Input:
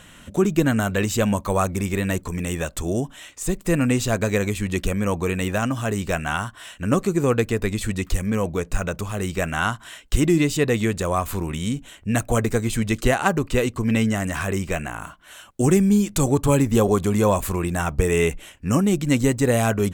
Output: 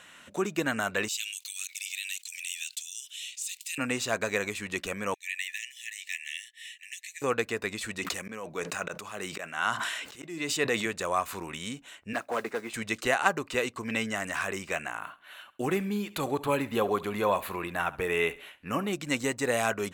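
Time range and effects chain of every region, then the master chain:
1.08–3.78 steep high-pass 2700 Hz + fast leveller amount 50%
5.14–7.22 brick-wall FIR high-pass 1700 Hz + notch 4700 Hz, Q 6.7
7.98–10.86 HPF 120 Hz + auto swell 0.361 s + sustainer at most 36 dB/s
12.13–12.74 three-band isolator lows -19 dB, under 190 Hz, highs -15 dB, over 2600 Hz + modulation noise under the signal 26 dB + overloaded stage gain 16.5 dB
14.99–18.93 band shelf 6800 Hz -12.5 dB 1 oct + feedback echo 68 ms, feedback 36%, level -18.5 dB
whole clip: HPF 1100 Hz 6 dB/oct; high shelf 6600 Hz -10.5 dB; notch 3200 Hz, Q 19

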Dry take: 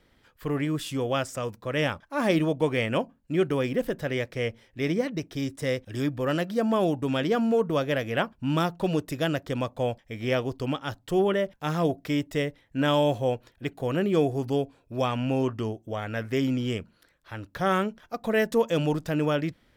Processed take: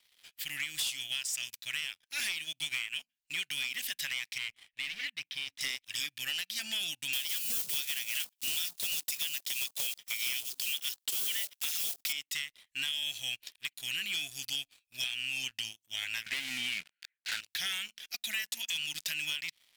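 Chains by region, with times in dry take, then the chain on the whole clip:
4.38–5.61 overloaded stage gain 27.5 dB + air absorption 260 m
7.13–12.13 block floating point 5-bit + tilt +3.5 dB/oct
16.26–17.41 speaker cabinet 170–2300 Hz, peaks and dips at 180 Hz +8 dB, 580 Hz +7 dB, 1400 Hz +9 dB + sample leveller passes 3
whole clip: inverse Chebyshev high-pass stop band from 1200 Hz, stop band 40 dB; compressor 10:1, threshold -44 dBFS; sample leveller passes 3; gain +4.5 dB

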